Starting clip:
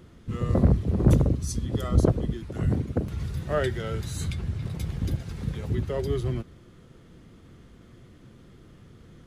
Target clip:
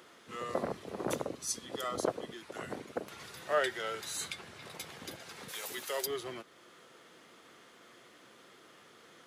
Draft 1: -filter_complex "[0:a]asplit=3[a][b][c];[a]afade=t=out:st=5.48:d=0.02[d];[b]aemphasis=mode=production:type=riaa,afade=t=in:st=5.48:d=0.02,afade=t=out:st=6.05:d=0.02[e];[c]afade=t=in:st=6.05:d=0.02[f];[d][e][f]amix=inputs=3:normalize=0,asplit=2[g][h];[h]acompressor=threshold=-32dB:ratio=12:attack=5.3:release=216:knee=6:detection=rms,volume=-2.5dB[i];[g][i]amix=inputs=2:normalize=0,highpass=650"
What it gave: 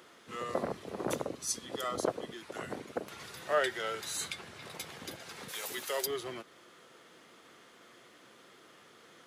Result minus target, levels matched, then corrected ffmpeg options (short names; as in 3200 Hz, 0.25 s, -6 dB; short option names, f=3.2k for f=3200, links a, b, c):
compressor: peak gain reduction -7.5 dB
-filter_complex "[0:a]asplit=3[a][b][c];[a]afade=t=out:st=5.48:d=0.02[d];[b]aemphasis=mode=production:type=riaa,afade=t=in:st=5.48:d=0.02,afade=t=out:st=6.05:d=0.02[e];[c]afade=t=in:st=6.05:d=0.02[f];[d][e][f]amix=inputs=3:normalize=0,asplit=2[g][h];[h]acompressor=threshold=-40dB:ratio=12:attack=5.3:release=216:knee=6:detection=rms,volume=-2.5dB[i];[g][i]amix=inputs=2:normalize=0,highpass=650"